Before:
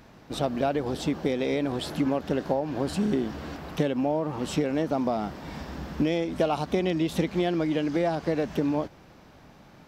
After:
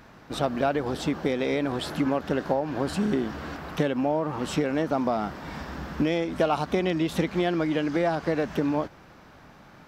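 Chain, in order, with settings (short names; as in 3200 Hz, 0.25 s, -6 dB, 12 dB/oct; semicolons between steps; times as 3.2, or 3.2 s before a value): bell 1400 Hz +6 dB 1.2 oct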